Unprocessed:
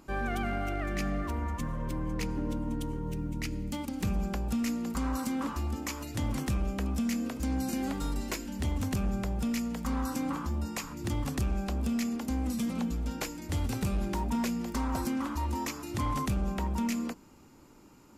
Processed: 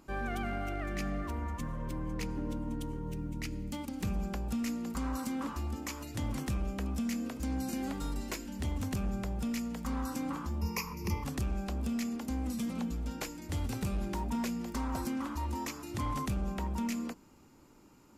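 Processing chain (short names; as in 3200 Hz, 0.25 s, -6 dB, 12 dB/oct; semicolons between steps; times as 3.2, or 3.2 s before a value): 10.61–11.24 ripple EQ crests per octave 0.82, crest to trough 17 dB; gain -3.5 dB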